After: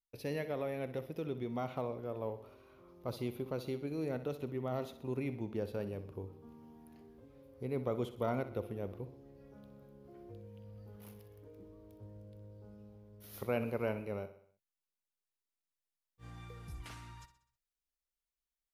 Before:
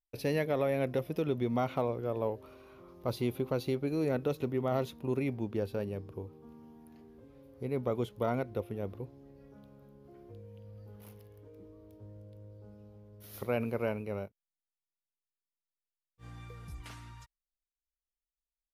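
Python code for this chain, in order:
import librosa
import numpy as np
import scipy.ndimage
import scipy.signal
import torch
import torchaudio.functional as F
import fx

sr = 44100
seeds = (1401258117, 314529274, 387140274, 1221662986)

p1 = fx.rider(x, sr, range_db=5, speed_s=2.0)
p2 = p1 + fx.echo_feedback(p1, sr, ms=63, feedback_pct=51, wet_db=-13.0, dry=0)
y = p2 * librosa.db_to_amplitude(-6.0)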